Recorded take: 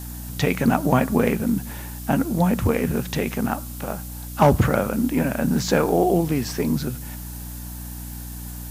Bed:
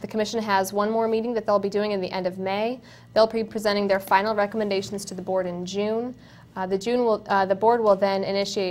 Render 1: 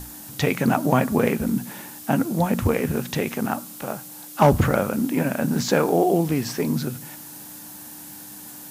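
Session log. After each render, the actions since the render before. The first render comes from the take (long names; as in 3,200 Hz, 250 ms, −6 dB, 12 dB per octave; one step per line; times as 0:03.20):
mains-hum notches 60/120/180/240 Hz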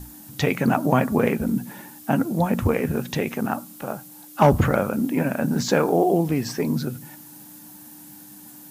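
broadband denoise 7 dB, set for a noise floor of −40 dBFS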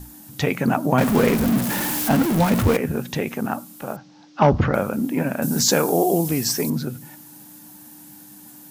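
0:00.98–0:02.77: converter with a step at zero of −19 dBFS
0:03.96–0:04.74: Butterworth low-pass 5,800 Hz 48 dB per octave
0:05.42–0:06.70: bass and treble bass 0 dB, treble +14 dB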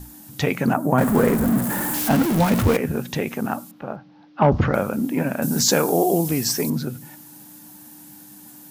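0:00.73–0:01.94: flat-topped bell 3,700 Hz −9 dB
0:03.71–0:04.52: high-frequency loss of the air 290 metres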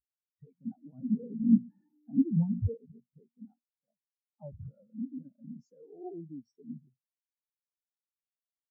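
brickwall limiter −12.5 dBFS, peak gain reduction 8.5 dB
every bin expanded away from the loudest bin 4 to 1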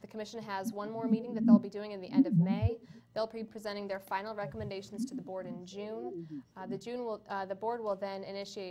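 mix in bed −16.5 dB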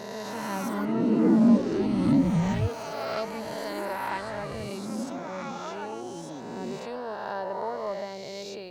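peak hold with a rise ahead of every peak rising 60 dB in 2.29 s
delay with pitch and tempo change per echo 252 ms, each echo +6 semitones, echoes 2, each echo −6 dB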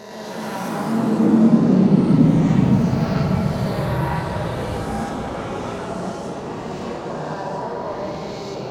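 dense smooth reverb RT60 2.9 s, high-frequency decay 0.45×, DRR −1.5 dB
delay with pitch and tempo change per echo 107 ms, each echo −3 semitones, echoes 3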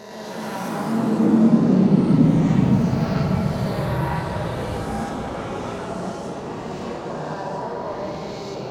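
level −1.5 dB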